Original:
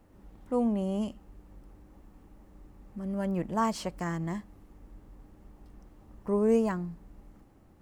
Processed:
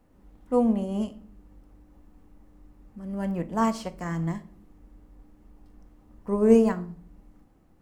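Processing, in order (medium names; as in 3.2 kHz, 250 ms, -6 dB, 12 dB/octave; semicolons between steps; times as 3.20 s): on a send at -8.5 dB: reverberation RT60 0.55 s, pre-delay 4 ms; on the sum: upward expansion 1.5:1, over -37 dBFS; trim +6 dB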